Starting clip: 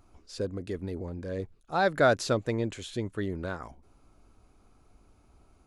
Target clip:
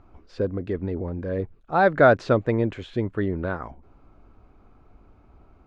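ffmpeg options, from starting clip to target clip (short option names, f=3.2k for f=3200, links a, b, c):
-af "lowpass=2.1k,volume=7dB"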